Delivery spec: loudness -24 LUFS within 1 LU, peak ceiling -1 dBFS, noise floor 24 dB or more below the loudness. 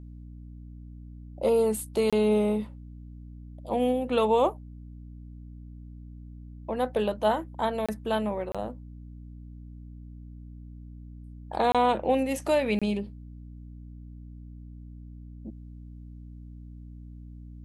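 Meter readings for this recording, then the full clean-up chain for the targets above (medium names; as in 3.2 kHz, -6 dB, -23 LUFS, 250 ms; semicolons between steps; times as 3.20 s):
dropouts 5; longest dropout 26 ms; hum 60 Hz; highest harmonic 300 Hz; hum level -41 dBFS; loudness -27.0 LUFS; peak level -11.5 dBFS; loudness target -24.0 LUFS
-> interpolate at 2.10/7.86/8.52/11.72/12.79 s, 26 ms; de-hum 60 Hz, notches 5; trim +3 dB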